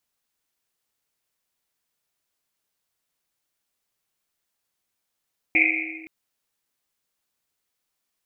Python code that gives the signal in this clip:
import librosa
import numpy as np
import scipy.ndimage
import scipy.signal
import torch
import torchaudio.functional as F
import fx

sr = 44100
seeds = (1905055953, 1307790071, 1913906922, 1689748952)

y = fx.risset_drum(sr, seeds[0], length_s=0.52, hz=320.0, decay_s=2.03, noise_hz=2300.0, noise_width_hz=440.0, noise_pct=75)